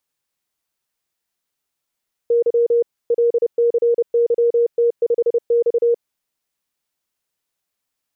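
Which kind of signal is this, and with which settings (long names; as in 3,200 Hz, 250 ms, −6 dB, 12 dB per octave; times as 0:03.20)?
Morse code "Y LCYT5X" 30 words per minute 471 Hz −12 dBFS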